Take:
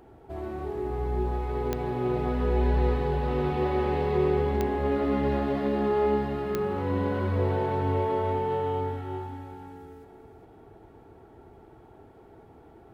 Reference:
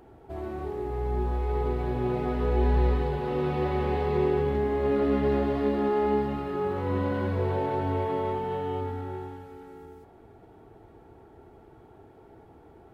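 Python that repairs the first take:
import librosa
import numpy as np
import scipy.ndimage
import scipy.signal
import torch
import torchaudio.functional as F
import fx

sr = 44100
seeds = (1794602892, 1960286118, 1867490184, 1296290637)

y = fx.fix_declick_ar(x, sr, threshold=10.0)
y = fx.fix_echo_inverse(y, sr, delay_ms=395, level_db=-8.0)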